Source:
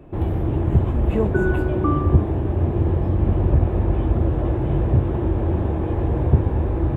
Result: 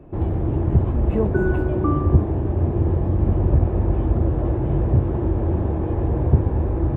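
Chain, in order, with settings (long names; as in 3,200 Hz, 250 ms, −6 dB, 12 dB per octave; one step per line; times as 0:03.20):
high-shelf EQ 2,500 Hz −11.5 dB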